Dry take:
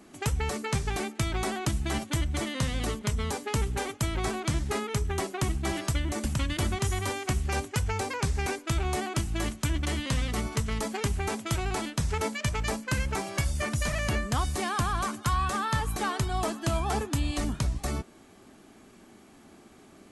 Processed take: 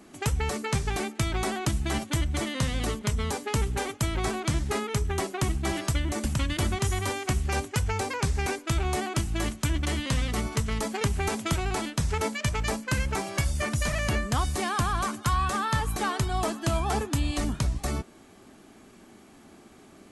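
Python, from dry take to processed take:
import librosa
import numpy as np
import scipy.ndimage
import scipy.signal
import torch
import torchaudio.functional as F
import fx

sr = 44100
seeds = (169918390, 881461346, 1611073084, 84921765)

y = fx.band_squash(x, sr, depth_pct=100, at=(11.01, 11.53))
y = y * 10.0 ** (1.5 / 20.0)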